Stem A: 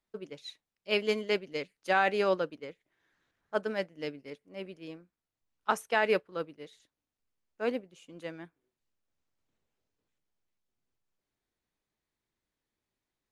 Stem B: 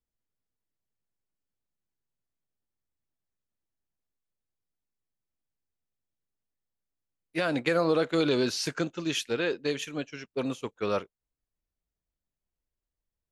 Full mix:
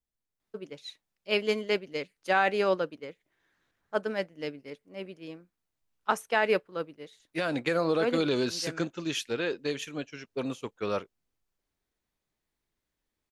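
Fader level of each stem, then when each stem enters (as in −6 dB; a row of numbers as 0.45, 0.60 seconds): +1.5, −2.0 decibels; 0.40, 0.00 seconds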